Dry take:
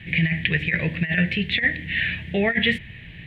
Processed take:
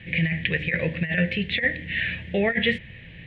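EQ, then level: air absorption 61 m; bell 520 Hz +11.5 dB 0.24 oct; notches 50/100/150 Hz; -2.0 dB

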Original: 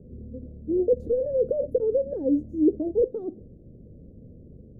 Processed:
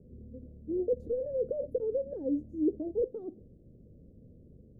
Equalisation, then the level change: none; -8.0 dB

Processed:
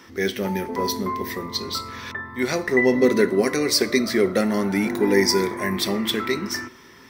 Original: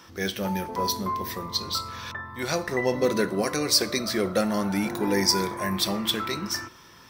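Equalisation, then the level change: thirty-one-band EQ 250 Hz +11 dB, 400 Hz +10 dB, 2000 Hz +10 dB; 0.0 dB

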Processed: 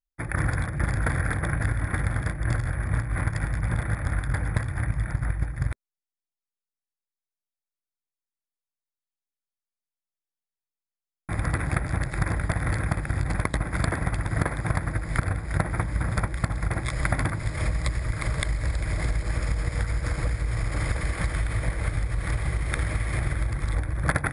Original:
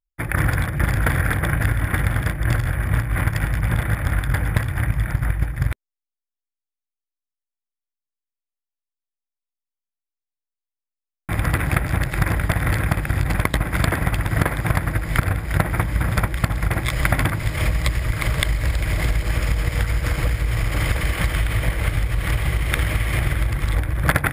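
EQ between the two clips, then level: brick-wall FIR low-pass 11000 Hz; bell 2900 Hz -14 dB 0.35 oct; -5.5 dB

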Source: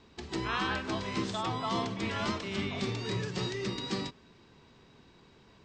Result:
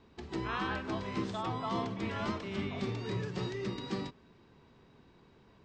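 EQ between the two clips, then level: high shelf 2800 Hz -10 dB; -1.5 dB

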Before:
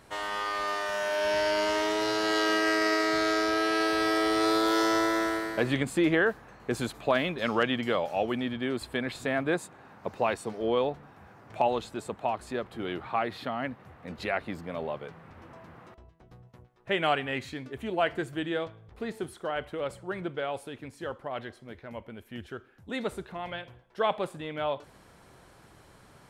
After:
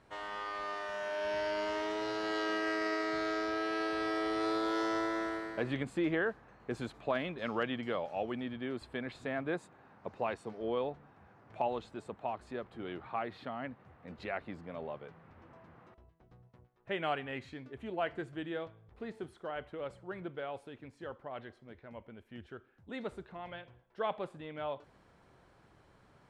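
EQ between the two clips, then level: LPF 10000 Hz 12 dB/oct; high shelf 5000 Hz -11.5 dB; -7.5 dB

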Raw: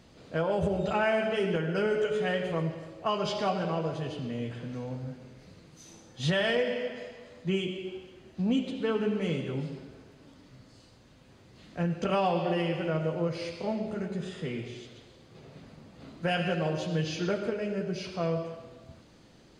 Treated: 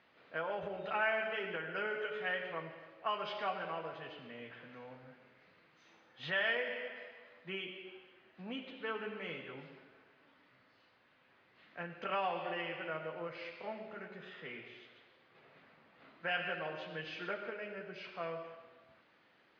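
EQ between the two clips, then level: band-pass 1900 Hz, Q 1.1; air absorption 240 m; +1.0 dB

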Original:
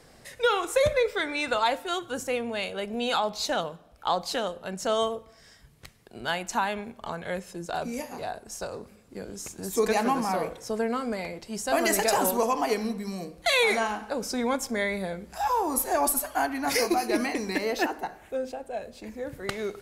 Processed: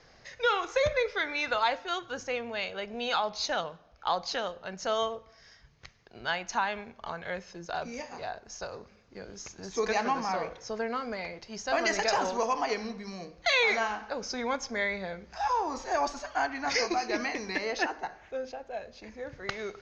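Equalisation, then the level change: rippled Chebyshev low-pass 6600 Hz, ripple 3 dB; bell 250 Hz -5.5 dB 1.6 oct; 0.0 dB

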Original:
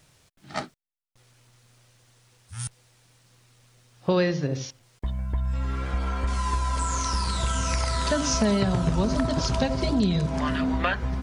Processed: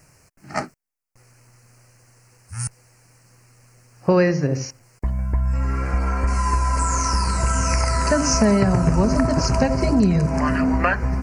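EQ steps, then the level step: Butterworth band-stop 3500 Hz, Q 1.6; +6.0 dB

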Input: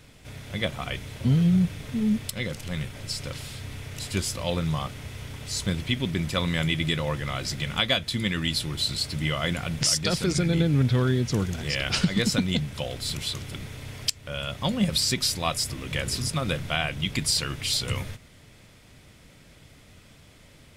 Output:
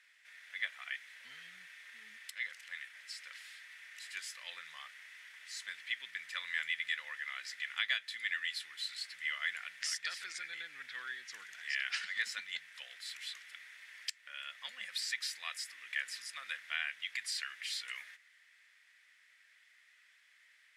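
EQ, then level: band-pass 1800 Hz, Q 5.6; differentiator; +12.0 dB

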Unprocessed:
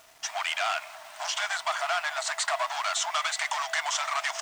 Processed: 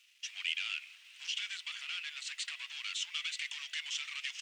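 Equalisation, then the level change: ladder high-pass 2400 Hz, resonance 60%; high shelf 9300 Hz -9 dB; 0.0 dB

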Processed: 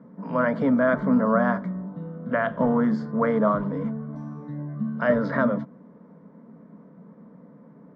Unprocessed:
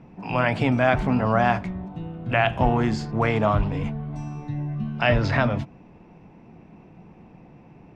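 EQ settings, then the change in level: BPF 220–2500 Hz; low shelf 500 Hz +8 dB; fixed phaser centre 520 Hz, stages 8; 0.0 dB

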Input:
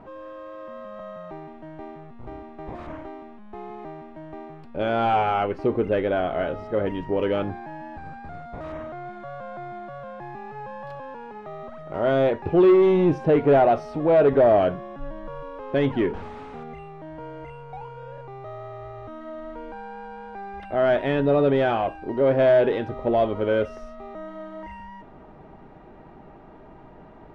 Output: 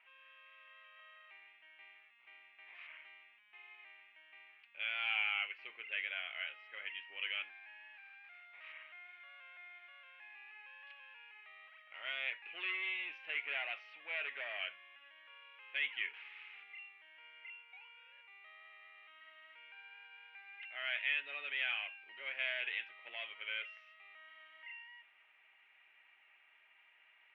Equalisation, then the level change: Butterworth band-pass 2500 Hz, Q 2.6; +4.0 dB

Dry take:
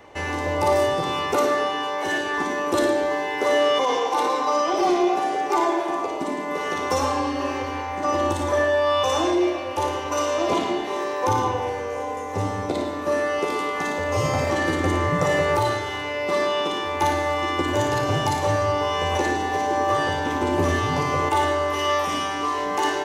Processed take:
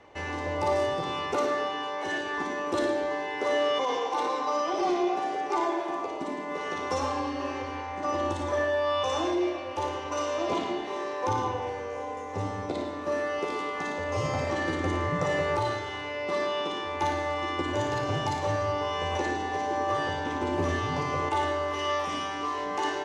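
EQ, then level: LPF 6600 Hz 12 dB/oct; -6.5 dB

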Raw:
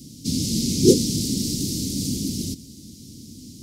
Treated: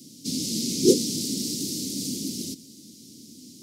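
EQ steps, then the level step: HPF 240 Hz 12 dB/oct; -2.0 dB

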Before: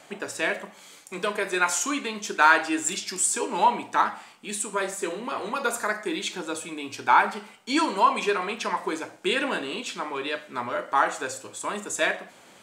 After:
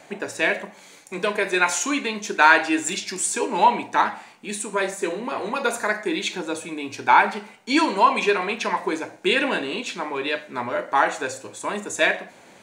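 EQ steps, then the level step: thirty-one-band EQ 1250 Hz -7 dB, 3150 Hz -7 dB, 5000 Hz -5 dB, 8000 Hz -6 dB, 12500 Hz -11 dB; dynamic EQ 3100 Hz, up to +5 dB, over -40 dBFS, Q 1.2; +4.5 dB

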